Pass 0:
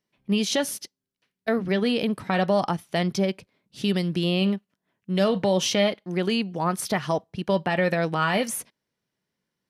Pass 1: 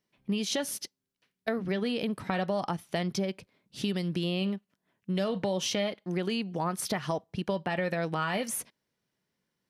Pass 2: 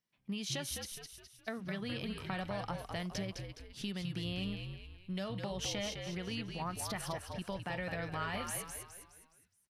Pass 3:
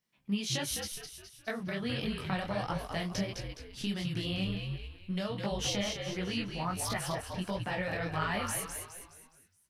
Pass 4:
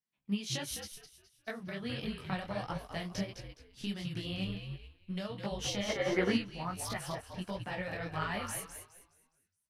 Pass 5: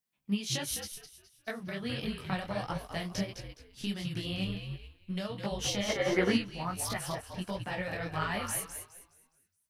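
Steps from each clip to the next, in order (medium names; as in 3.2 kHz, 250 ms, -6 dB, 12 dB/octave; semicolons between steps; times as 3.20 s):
compression 3:1, threshold -29 dBFS, peak gain reduction 9.5 dB
peaking EQ 400 Hz -7.5 dB 1.5 oct; on a send: frequency-shifting echo 208 ms, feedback 44%, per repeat -65 Hz, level -5.5 dB; on the sum: trim -6.5 dB
detune thickener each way 50 cents; trim +8.5 dB
time-frequency box 5.89–6.37 s, 210–2300 Hz +10 dB; upward expansion 1.5:1, over -53 dBFS
treble shelf 8.8 kHz +6 dB; trim +2.5 dB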